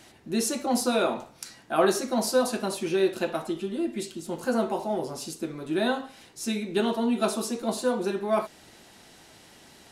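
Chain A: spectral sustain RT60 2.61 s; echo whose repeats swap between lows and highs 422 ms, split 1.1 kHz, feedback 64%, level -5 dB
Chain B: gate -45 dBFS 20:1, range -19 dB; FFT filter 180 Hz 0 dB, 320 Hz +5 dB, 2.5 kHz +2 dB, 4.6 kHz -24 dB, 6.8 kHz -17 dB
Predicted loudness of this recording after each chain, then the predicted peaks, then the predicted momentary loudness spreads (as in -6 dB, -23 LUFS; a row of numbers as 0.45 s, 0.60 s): -21.5 LUFS, -24.5 LUFS; -6.0 dBFS, -5.0 dBFS; 8 LU, 11 LU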